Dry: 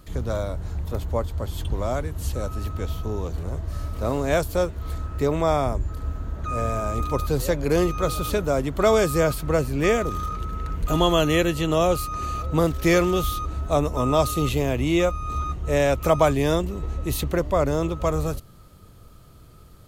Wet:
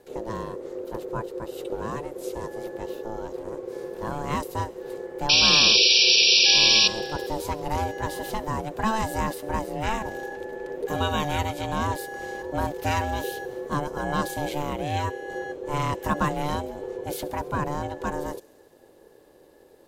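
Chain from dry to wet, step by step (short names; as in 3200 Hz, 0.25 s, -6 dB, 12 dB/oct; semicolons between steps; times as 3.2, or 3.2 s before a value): ring modulator 440 Hz; painted sound noise, 5.29–6.88, 2300–5800 Hz -14 dBFS; thin delay 68 ms, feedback 77%, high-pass 2800 Hz, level -20 dB; gain -3.5 dB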